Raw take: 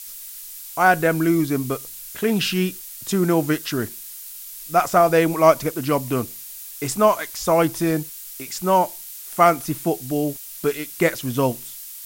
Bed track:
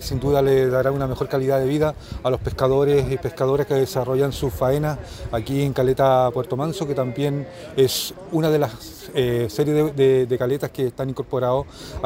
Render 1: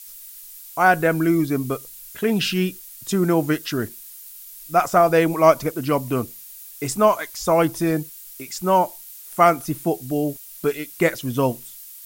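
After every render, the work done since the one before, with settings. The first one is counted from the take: noise reduction 6 dB, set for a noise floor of -38 dBFS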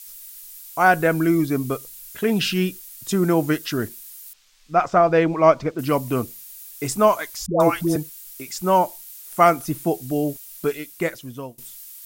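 4.33–5.79 s: distance through air 150 m; 7.46–7.96 s: phase dispersion highs, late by 141 ms, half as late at 630 Hz; 10.53–11.58 s: fade out, to -23 dB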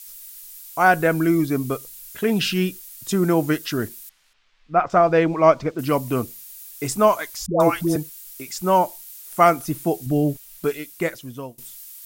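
4.09–4.90 s: low-pass 2.6 kHz; 10.06–10.64 s: tone controls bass +8 dB, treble -4 dB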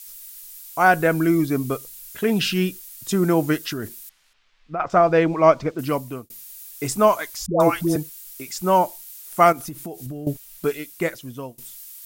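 3.70–4.80 s: compression, threshold -24 dBFS; 5.59–6.30 s: fade out equal-power; 9.52–10.27 s: compression 8:1, threshold -29 dBFS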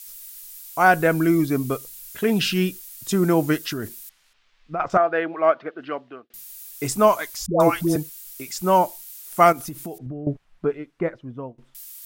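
4.97–6.34 s: cabinet simulation 480–3000 Hz, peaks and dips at 520 Hz -5 dB, 970 Hz -9 dB, 1.6 kHz +4 dB, 2.3 kHz -7 dB; 9.98–11.75 s: low-pass 1.3 kHz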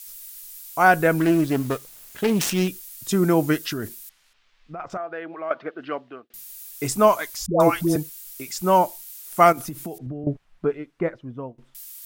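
1.18–2.68 s: self-modulated delay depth 0.28 ms; 3.93–5.51 s: compression 2:1, threshold -37 dBFS; 9.57–10.24 s: three bands compressed up and down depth 40%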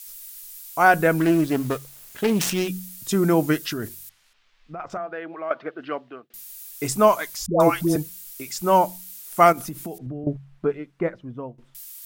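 de-hum 45.93 Hz, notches 4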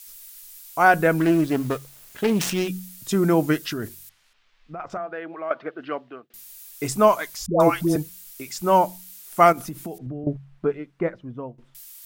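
peaking EQ 15 kHz -3.5 dB 1.7 oct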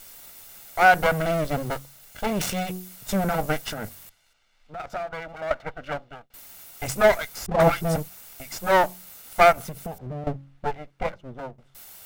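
comb filter that takes the minimum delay 1.4 ms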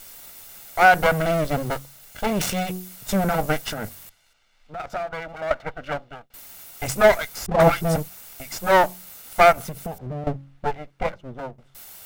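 trim +2.5 dB; peak limiter -3 dBFS, peak gain reduction 1.5 dB

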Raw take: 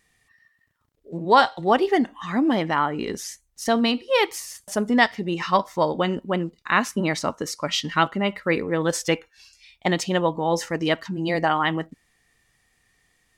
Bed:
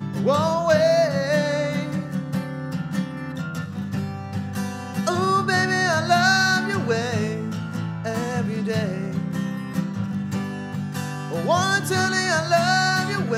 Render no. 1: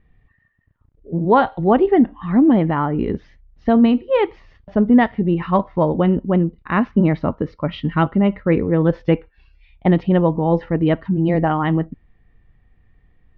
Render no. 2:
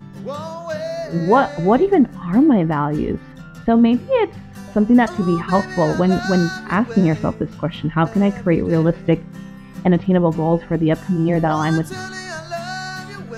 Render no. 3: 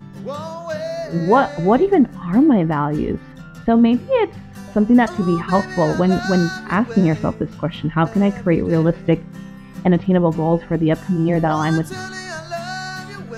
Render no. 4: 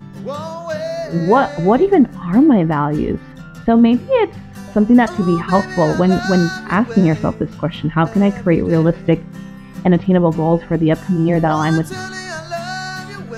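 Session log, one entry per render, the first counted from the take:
inverse Chebyshev low-pass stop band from 8.1 kHz, stop band 50 dB; tilt EQ -4.5 dB/octave
add bed -8.5 dB
no audible change
trim +2.5 dB; peak limiter -2 dBFS, peak gain reduction 2.5 dB

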